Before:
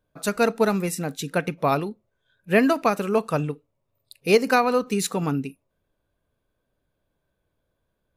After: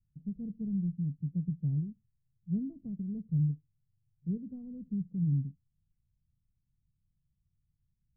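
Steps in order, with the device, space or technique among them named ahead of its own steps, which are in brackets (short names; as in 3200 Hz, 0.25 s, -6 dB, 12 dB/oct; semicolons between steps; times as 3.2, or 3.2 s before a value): the neighbour's flat through the wall (LPF 160 Hz 24 dB/oct; bell 150 Hz +3 dB)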